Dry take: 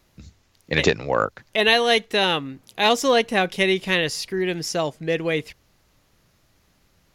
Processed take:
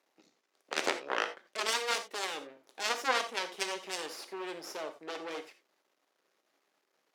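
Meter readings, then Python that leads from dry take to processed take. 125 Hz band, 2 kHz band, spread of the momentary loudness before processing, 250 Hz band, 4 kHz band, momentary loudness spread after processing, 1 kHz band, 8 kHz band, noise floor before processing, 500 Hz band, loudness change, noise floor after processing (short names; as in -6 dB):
under -30 dB, -13.0 dB, 8 LU, -20.5 dB, -13.0 dB, 11 LU, -11.0 dB, -6.5 dB, -63 dBFS, -17.0 dB, -14.0 dB, -79 dBFS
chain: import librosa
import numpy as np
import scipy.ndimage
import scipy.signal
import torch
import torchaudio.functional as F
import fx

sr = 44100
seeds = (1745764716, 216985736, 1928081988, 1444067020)

y = np.maximum(x, 0.0)
y = fx.high_shelf(y, sr, hz=4000.0, db=-11.5)
y = fx.cheby_harmonics(y, sr, harmonics=(3, 5, 7), levels_db=(-18, -22, -10), full_scale_db=-4.5)
y = scipy.signal.sosfilt(scipy.signal.butter(4, 330.0, 'highpass', fs=sr, output='sos'), y)
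y = fx.peak_eq(y, sr, hz=9100.0, db=2.5, octaves=1.7)
y = fx.rev_gated(y, sr, seeds[0], gate_ms=110, shape='flat', drr_db=8.0)
y = y * 10.0 ** (-7.0 / 20.0)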